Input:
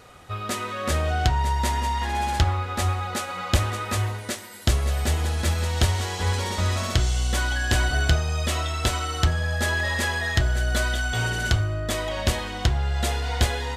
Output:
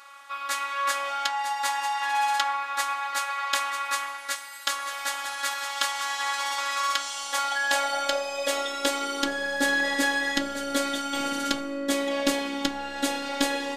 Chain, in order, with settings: high-pass sweep 1100 Hz -> 280 Hz, 6.89–9.69; robotiser 280 Hz; gain +2 dB

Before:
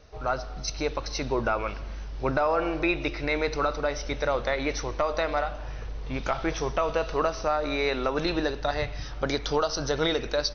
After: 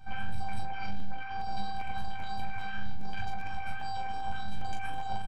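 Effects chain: tracing distortion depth 0.12 ms; LPF 1500 Hz 12 dB/oct; low shelf 89 Hz +6 dB; notch 900 Hz, Q 26; de-hum 45.89 Hz, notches 34; negative-ratio compressor -33 dBFS, ratio -1; robotiser 390 Hz; flange 1.4 Hz, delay 1.9 ms, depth 8.6 ms, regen +61%; early reflections 41 ms -8 dB, 79 ms -5 dB; on a send at -21 dB: reverb RT60 0.40 s, pre-delay 47 ms; on the sum: speed mistake 7.5 ips tape played at 15 ips; crackling interface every 0.40 s, samples 512, repeat, from 0.99

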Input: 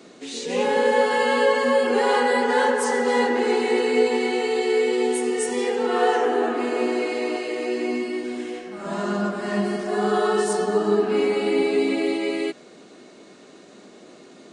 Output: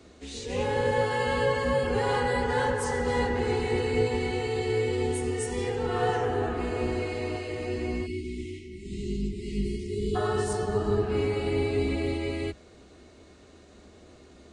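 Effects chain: octaver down 2 oct, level +1 dB; spectral delete 8.06–10.15, 440–1900 Hz; gain -7 dB

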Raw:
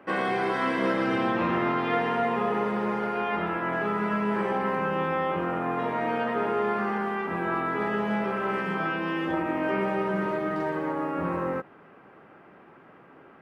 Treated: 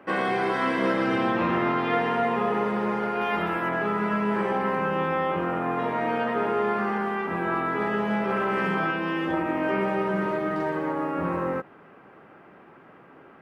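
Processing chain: 3.21–3.69 high shelf 4500 Hz +10 dB; 8.29–8.91 fast leveller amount 100%; gain +1.5 dB

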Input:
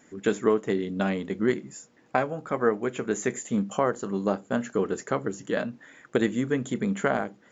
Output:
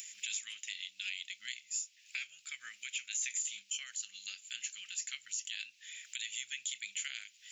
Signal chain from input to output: elliptic high-pass 2500 Hz, stop band 60 dB; upward compressor, threshold -47 dBFS; limiter -34 dBFS, peak gain reduction 10 dB; gain +8 dB

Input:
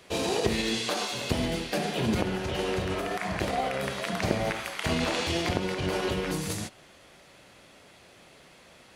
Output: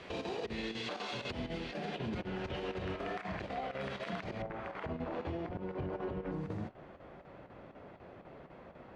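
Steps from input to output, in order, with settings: LPF 3300 Hz 12 dB/oct, from 4.42 s 1100 Hz; compressor 10:1, threshold -39 dBFS, peak gain reduction 19.5 dB; limiter -34.5 dBFS, peak gain reduction 9.5 dB; chopper 4 Hz, depth 60%, duty 85%; gain +5 dB

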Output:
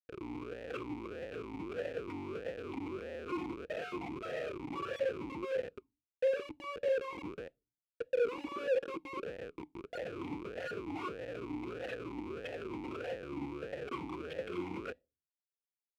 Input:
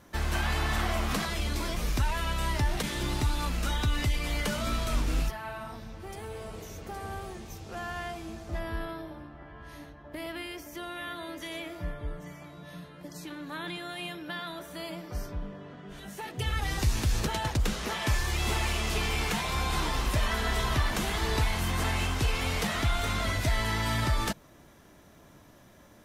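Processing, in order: spectral gate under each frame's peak -10 dB strong; low-pass opened by the level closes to 410 Hz, open at -24 dBFS; comb 2.5 ms, depth 97%; dynamic EQ 490 Hz, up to +7 dB, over -51 dBFS, Q 1.9; in parallel at 0 dB: compressor 16:1, threshold -36 dBFS, peak gain reduction 20.5 dB; on the sum: limiter -21.5 dBFS, peak gain reduction 10 dB; AGC gain up to 10.5 dB; wide varispeed 1.63×; Schmitt trigger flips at -21.5 dBFS; on a send at -24 dB: reverb RT60 0.30 s, pre-delay 4 ms; on the sum: vowel sweep e-u 1.6 Hz; gain -6.5 dB

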